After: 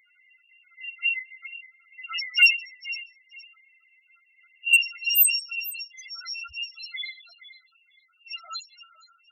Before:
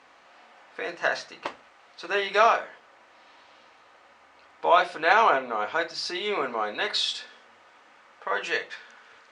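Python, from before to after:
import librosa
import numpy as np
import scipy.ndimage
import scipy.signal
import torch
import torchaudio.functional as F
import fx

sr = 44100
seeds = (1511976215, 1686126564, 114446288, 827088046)

y = fx.bit_reversed(x, sr, seeds[0], block=256)
y = fx.env_lowpass(y, sr, base_hz=2800.0, full_db=-16.0)
y = fx.peak_eq(y, sr, hz=2000.0, db=fx.steps((0.0, 14.5), (5.05, 4.5)), octaves=0.67)
y = fx.echo_feedback(y, sr, ms=470, feedback_pct=23, wet_db=-15.0)
y = fx.spec_topn(y, sr, count=2)
y = fx.high_shelf(y, sr, hz=7500.0, db=7.5)
y = np.clip(y, -10.0 ** (-17.0 / 20.0), 10.0 ** (-17.0 / 20.0))
y = fx.am_noise(y, sr, seeds[1], hz=5.7, depth_pct=60)
y = F.gain(torch.from_numpy(y), 9.0).numpy()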